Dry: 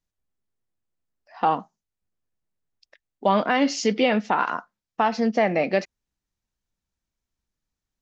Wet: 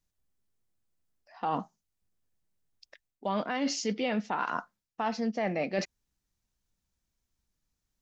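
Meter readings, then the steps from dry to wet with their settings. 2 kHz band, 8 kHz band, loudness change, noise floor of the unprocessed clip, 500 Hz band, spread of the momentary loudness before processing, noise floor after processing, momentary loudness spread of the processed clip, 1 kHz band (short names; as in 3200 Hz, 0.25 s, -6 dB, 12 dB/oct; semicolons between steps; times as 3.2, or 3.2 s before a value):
-9.5 dB, n/a, -9.5 dB, under -85 dBFS, -10.0 dB, 7 LU, -85 dBFS, 8 LU, -10.0 dB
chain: tone controls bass +3 dB, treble +4 dB; reverse; compressor 4:1, threshold -29 dBFS, peak gain reduction 12.5 dB; reverse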